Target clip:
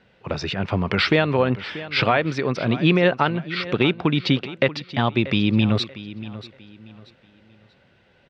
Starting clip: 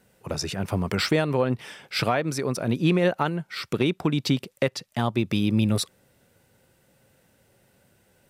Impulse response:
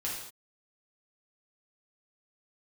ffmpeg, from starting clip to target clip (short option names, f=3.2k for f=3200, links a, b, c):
-filter_complex "[0:a]lowpass=f=3.7k:w=0.5412,lowpass=f=3.7k:w=1.3066,tiltshelf=f=1.5k:g=-3.5,asplit=2[a][b];[b]aecho=0:1:635|1270|1905:0.168|0.0504|0.0151[c];[a][c]amix=inputs=2:normalize=0,volume=6.5dB"